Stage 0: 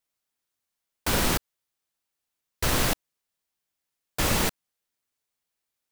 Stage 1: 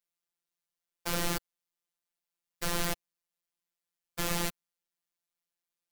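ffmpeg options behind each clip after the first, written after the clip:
ffmpeg -i in.wav -af "afftfilt=real='hypot(re,im)*cos(PI*b)':imag='0':win_size=1024:overlap=0.75,volume=-4dB" out.wav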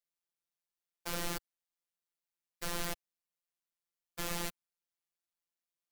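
ffmpeg -i in.wav -af "equalizer=frequency=93:width_type=o:width=1.8:gain=-4,volume=-5.5dB" out.wav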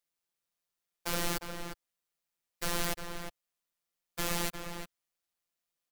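ffmpeg -i in.wav -filter_complex "[0:a]asplit=2[link_01][link_02];[link_02]adelay=355.7,volume=-7dB,highshelf=frequency=4000:gain=-8[link_03];[link_01][link_03]amix=inputs=2:normalize=0,volume=4.5dB" out.wav

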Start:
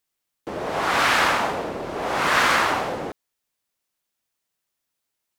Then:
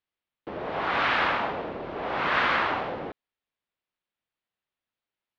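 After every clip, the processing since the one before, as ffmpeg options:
ffmpeg -i in.wav -af "lowpass=frequency=3700:width=0.5412,lowpass=frequency=3700:width=1.3066,volume=-5dB" out.wav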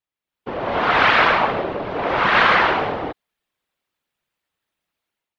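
ffmpeg -i in.wav -af "afftfilt=real='hypot(re,im)*cos(2*PI*random(0))':imag='hypot(re,im)*sin(2*PI*random(1))':win_size=512:overlap=0.75,dynaudnorm=framelen=110:gausssize=7:maxgain=11dB,volume=4.5dB" out.wav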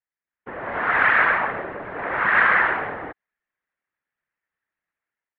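ffmpeg -i in.wav -af "lowpass=frequency=1800:width_type=q:width=3.7,volume=-9dB" out.wav

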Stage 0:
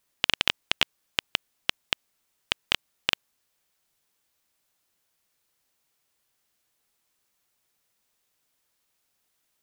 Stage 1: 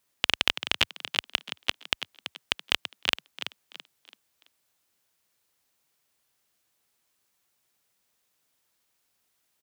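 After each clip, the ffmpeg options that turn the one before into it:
ffmpeg -i in.wav -filter_complex "[0:a]highpass=46,asplit=5[link_01][link_02][link_03][link_04][link_05];[link_02]adelay=333,afreqshift=51,volume=-10dB[link_06];[link_03]adelay=666,afreqshift=102,volume=-19.4dB[link_07];[link_04]adelay=999,afreqshift=153,volume=-28.7dB[link_08];[link_05]adelay=1332,afreqshift=204,volume=-38.1dB[link_09];[link_01][link_06][link_07][link_08][link_09]amix=inputs=5:normalize=0" out.wav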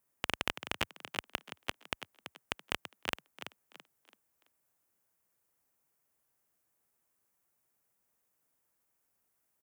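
ffmpeg -i in.wav -af "equalizer=frequency=3800:width=0.91:gain=-13.5,volume=-2.5dB" out.wav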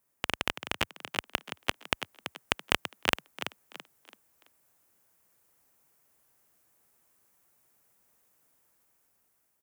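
ffmpeg -i in.wav -af "dynaudnorm=framelen=590:gausssize=5:maxgain=7dB,volume=3dB" out.wav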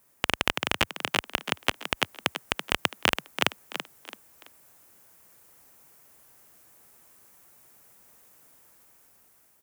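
ffmpeg -i in.wav -af "alimiter=level_in=13dB:limit=-1dB:release=50:level=0:latency=1,volume=-1dB" out.wav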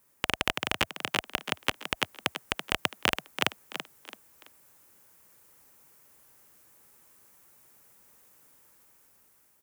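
ffmpeg -i in.wav -af "asuperstop=centerf=690:order=4:qfactor=7.6,volume=-2.5dB" out.wav

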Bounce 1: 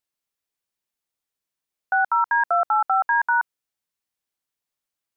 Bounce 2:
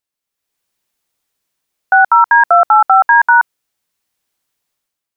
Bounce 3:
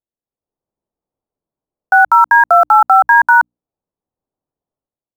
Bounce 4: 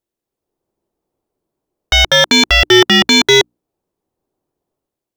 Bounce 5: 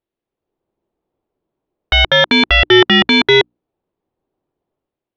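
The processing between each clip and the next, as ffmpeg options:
ffmpeg -i in.wav -af "dynaudnorm=framelen=100:gausssize=9:maxgain=11dB,volume=2dB" out.wav
ffmpeg -i in.wav -filter_complex "[0:a]bandreject=frequency=60:width_type=h:width=6,bandreject=frequency=120:width_type=h:width=6,bandreject=frequency=180:width_type=h:width=6,bandreject=frequency=240:width_type=h:width=6,bandreject=frequency=300:width_type=h:width=6,acrossover=split=880[link_01][link_02];[link_02]aeval=exprs='val(0)*gte(abs(val(0)),0.0447)':channel_layout=same[link_03];[link_01][link_03]amix=inputs=2:normalize=0" out.wav
ffmpeg -i in.wav -af "aeval=exprs='0.891*sin(PI/2*2.82*val(0)/0.891)':channel_layout=same,equalizer=frequency=360:width=3.1:gain=7.5,volume=-4.5dB" out.wav
ffmpeg -i in.wav -af "lowpass=frequency=3600:width=0.5412,lowpass=frequency=3600:width=1.3066" out.wav

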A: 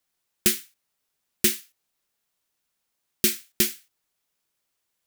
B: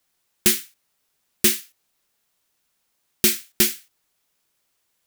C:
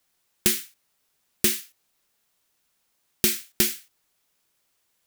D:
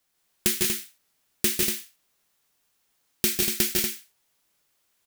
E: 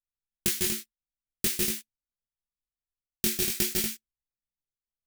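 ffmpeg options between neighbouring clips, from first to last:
ffmpeg -i in.wav -af "asoftclip=type=tanh:threshold=-14.5dB,volume=6.5dB" out.wav
ffmpeg -i in.wav -af "acompressor=threshold=-17dB:ratio=6" out.wav
ffmpeg -i in.wav -af "aecho=1:1:149|160|184|239:0.531|0.596|0.447|0.501,volume=-2.5dB" out.wav
ffmpeg -i in.wav -af "bass=frequency=250:gain=4,treble=frequency=4000:gain=2,anlmdn=2.51,flanger=delay=17.5:depth=6:speed=0.49,volume=-1.5dB" out.wav

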